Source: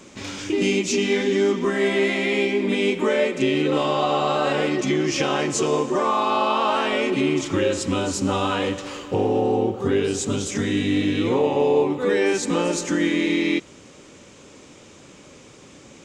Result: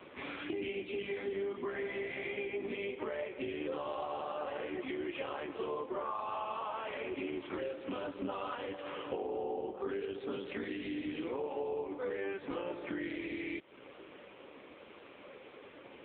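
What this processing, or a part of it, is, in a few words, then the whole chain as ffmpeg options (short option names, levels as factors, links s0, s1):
voicemail: -af "highpass=380,lowpass=3100,acompressor=threshold=0.0178:ratio=8,volume=1.12" -ar 8000 -c:a libopencore_amrnb -b:a 5900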